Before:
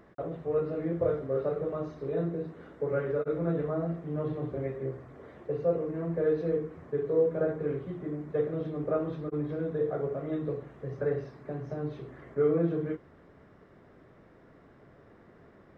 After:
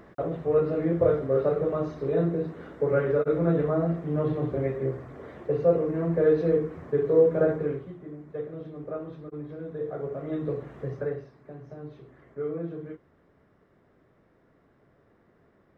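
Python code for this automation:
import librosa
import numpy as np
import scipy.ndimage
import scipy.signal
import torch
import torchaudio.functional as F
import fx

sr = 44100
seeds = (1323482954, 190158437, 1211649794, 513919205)

y = fx.gain(x, sr, db=fx.line((7.55, 6.0), (7.98, -5.5), (9.59, -5.5), (10.81, 6.0), (11.28, -6.5)))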